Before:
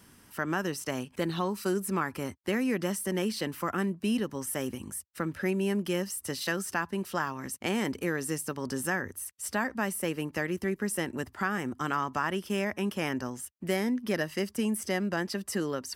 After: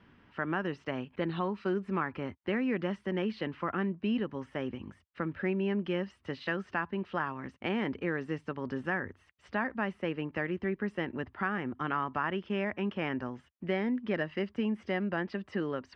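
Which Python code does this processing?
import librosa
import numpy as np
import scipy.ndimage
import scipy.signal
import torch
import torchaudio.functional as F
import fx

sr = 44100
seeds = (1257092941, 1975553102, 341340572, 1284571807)

y = scipy.signal.sosfilt(scipy.signal.butter(4, 3100.0, 'lowpass', fs=sr, output='sos'), x)
y = y * librosa.db_to_amplitude(-2.0)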